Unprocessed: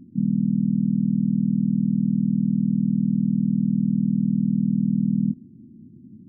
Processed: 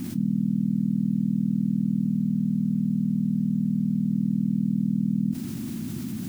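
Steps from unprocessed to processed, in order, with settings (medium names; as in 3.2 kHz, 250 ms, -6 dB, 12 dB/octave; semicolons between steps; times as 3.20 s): 2.02–4.12 s: de-hum 70.05 Hz, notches 15; word length cut 10-bit, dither triangular; level flattener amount 70%; trim -4.5 dB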